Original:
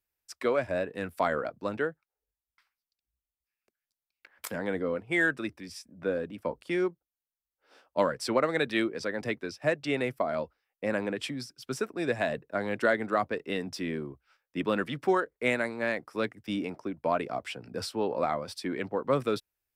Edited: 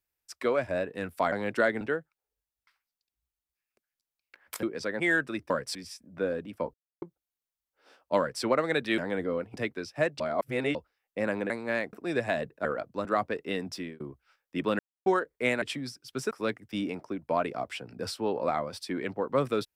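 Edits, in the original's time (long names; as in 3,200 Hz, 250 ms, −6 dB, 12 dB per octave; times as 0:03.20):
0:01.32–0:01.72: swap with 0:12.57–0:13.06
0:04.54–0:05.10: swap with 0:08.83–0:09.20
0:06.59–0:06.87: silence
0:08.03–0:08.28: duplicate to 0:05.60
0:09.86–0:10.41: reverse
0:11.16–0:11.85: swap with 0:15.63–0:16.06
0:13.75–0:14.01: fade out
0:14.80–0:15.07: silence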